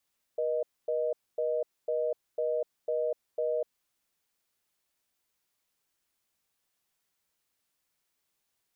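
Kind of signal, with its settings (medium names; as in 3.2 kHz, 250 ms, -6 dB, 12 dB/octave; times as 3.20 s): call progress tone reorder tone, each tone -29.5 dBFS 3.41 s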